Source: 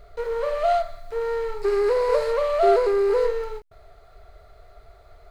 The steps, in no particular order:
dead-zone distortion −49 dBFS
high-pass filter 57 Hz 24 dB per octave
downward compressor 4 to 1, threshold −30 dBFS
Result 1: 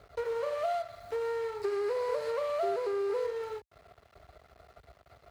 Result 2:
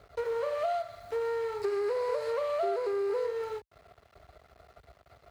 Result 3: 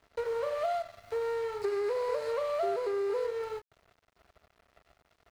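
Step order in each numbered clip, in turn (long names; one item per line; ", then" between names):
downward compressor, then dead-zone distortion, then high-pass filter
dead-zone distortion, then high-pass filter, then downward compressor
high-pass filter, then downward compressor, then dead-zone distortion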